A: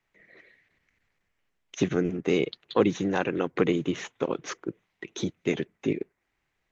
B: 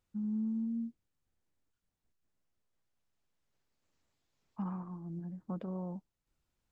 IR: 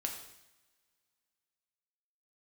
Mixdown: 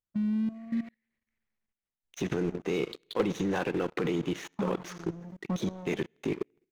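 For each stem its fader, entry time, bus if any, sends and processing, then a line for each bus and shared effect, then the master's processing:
-10.5 dB, 0.40 s, send -8 dB, dry
-3.0 dB, 0.00 s, send -9 dB, reverb removal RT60 0.74 s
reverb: on, pre-delay 3 ms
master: bell 260 Hz -3 dB 0.36 oct; level quantiser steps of 13 dB; sample leveller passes 3

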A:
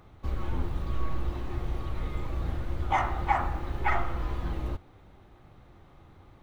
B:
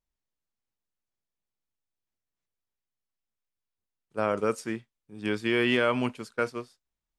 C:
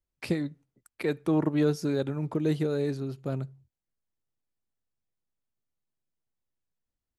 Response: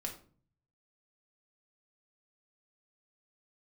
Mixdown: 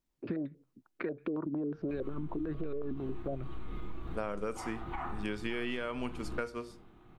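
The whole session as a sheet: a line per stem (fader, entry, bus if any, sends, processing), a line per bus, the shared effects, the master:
-4.0 dB, 1.65 s, bus A, send -4.5 dB, bell 540 Hz -12.5 dB 0.35 oct; limiter -23.5 dBFS, peak gain reduction 11 dB
+0.5 dB, 0.00 s, no bus, send -8.5 dB, dry
+1.0 dB, 0.00 s, bus A, no send, vibrato 5.8 Hz 57 cents; stepped low-pass 11 Hz 250–2200 Hz
bus A: 0.0 dB, speaker cabinet 120–4700 Hz, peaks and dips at 330 Hz +5 dB, 850 Hz -6 dB, 2000 Hz -9 dB; limiter -18.5 dBFS, peak gain reduction 10.5 dB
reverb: on, RT60 0.45 s, pre-delay 4 ms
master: compressor 6:1, threshold -33 dBFS, peak gain reduction 16 dB

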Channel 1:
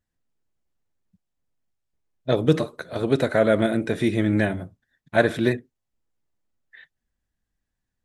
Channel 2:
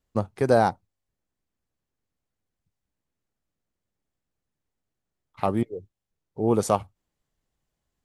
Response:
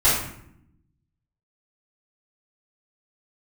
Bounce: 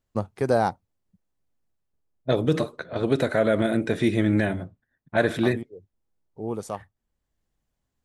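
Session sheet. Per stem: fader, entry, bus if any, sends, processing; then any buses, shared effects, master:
0.0 dB, 0.00 s, no send, low-pass opened by the level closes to 1100 Hz, open at -19.5 dBFS
-1.5 dB, 0.00 s, no send, auto duck -9 dB, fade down 0.60 s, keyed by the first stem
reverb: off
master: limiter -10 dBFS, peak gain reduction 5 dB

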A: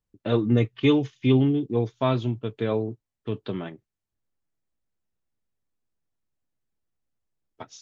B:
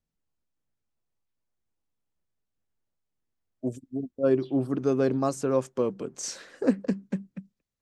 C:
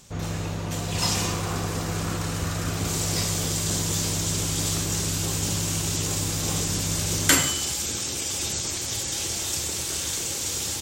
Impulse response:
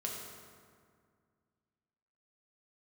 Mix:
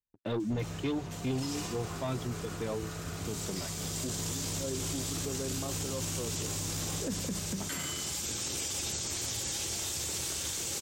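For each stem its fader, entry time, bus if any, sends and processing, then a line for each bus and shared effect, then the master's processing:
-12.0 dB, 0.00 s, no send, reverb removal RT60 1.6 s; sample leveller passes 2
-1.5 dB, 0.40 s, no send, dry
+1.0 dB, 0.40 s, send -18.5 dB, auto duck -17 dB, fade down 0.85 s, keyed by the first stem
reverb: on, RT60 2.0 s, pre-delay 4 ms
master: limiter -26 dBFS, peak gain reduction 16 dB

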